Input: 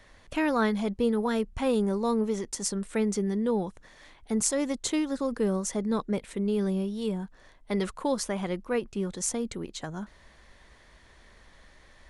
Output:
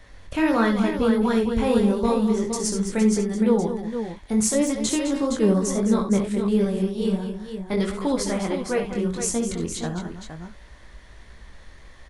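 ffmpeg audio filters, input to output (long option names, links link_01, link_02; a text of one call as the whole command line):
ffmpeg -i in.wav -af "lowshelf=frequency=120:gain=8.5,asoftclip=type=hard:threshold=-14.5dB,flanger=delay=17:depth=6.9:speed=1.5,aecho=1:1:60|70|209|464:0.251|0.299|0.299|0.398,volume=6.5dB" out.wav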